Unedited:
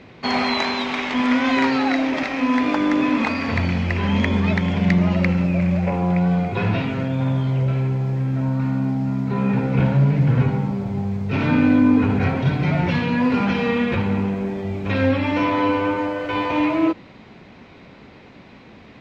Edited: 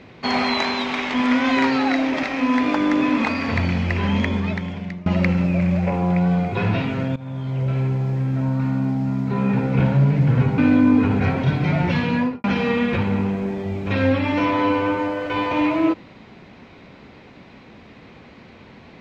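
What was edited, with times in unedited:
4.05–5.06 s: fade out, to -23 dB
7.16–7.81 s: fade in, from -18 dB
10.58–11.57 s: delete
13.15–13.43 s: studio fade out

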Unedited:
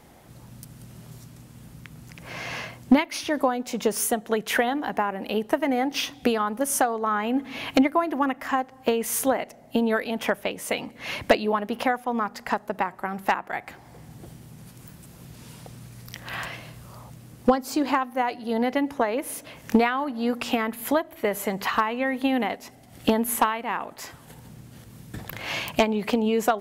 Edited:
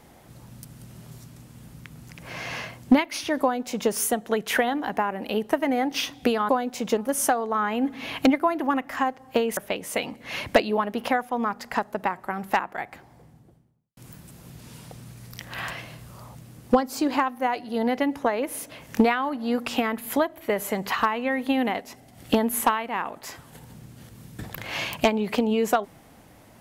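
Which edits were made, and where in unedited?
3.42–3.90 s: copy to 6.49 s
9.09–10.32 s: delete
13.28–14.72 s: studio fade out

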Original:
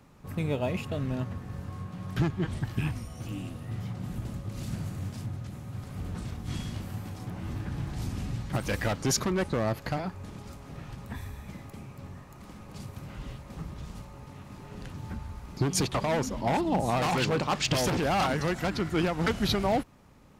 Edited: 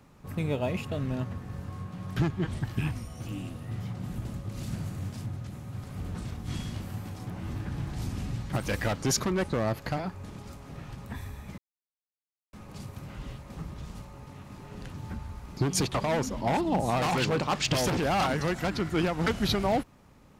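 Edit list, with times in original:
11.58–12.53 s: mute

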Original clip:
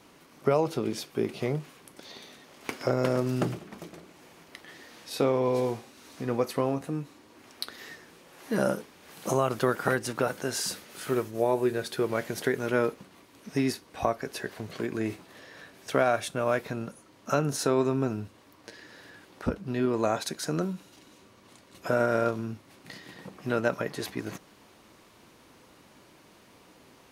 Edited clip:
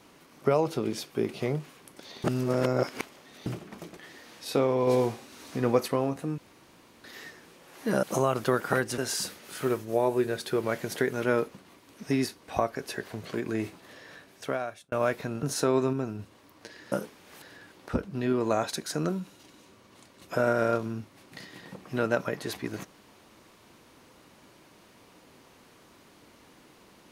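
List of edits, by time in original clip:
2.24–3.46 s: reverse
3.97–4.62 s: delete
5.52–6.53 s: gain +3.5 dB
7.03–7.69 s: room tone
8.68–9.18 s: move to 18.95 s
10.13–10.44 s: delete
15.55–16.38 s: fade out
16.89–17.46 s: delete
17.96–18.22 s: gain -3.5 dB

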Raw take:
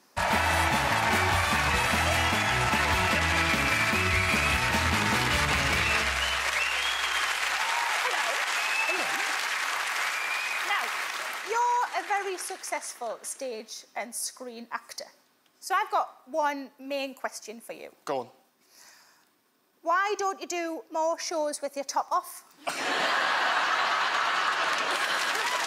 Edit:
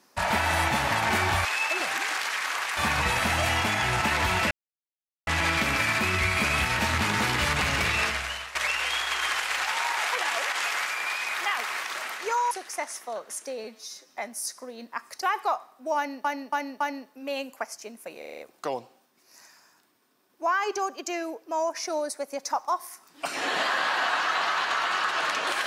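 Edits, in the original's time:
3.19 s: insert silence 0.76 s
5.93–6.47 s: fade out linear, to -15 dB
8.63–9.95 s: move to 1.45 s
11.75–12.45 s: delete
13.58–13.89 s: stretch 1.5×
15.00–15.69 s: delete
16.44–16.72 s: loop, 4 plays
17.82 s: stutter 0.04 s, 6 plays

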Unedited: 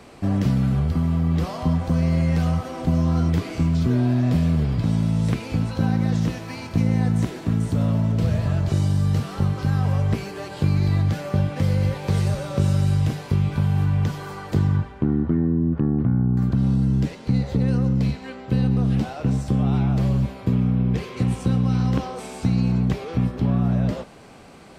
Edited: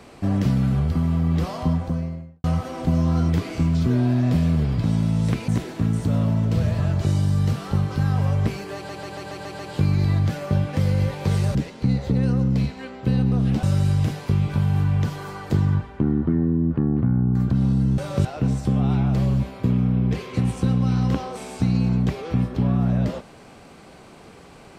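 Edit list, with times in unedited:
1.57–2.44 s: studio fade out
5.48–7.15 s: delete
10.42 s: stutter 0.14 s, 7 plays
12.38–12.65 s: swap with 17.00–19.08 s

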